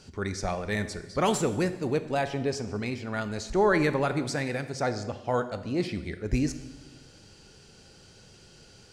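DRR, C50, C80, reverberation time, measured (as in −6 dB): 10.5 dB, 12.0 dB, 14.0 dB, 1.2 s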